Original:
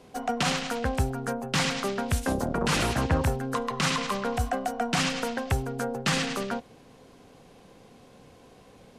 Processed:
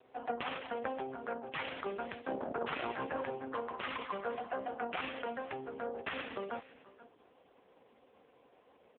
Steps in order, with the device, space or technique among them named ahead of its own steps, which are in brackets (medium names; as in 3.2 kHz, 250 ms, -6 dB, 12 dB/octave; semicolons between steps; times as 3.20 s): satellite phone (band-pass 350–3200 Hz; delay 485 ms -18.5 dB; trim -5 dB; AMR-NB 4.75 kbps 8 kHz)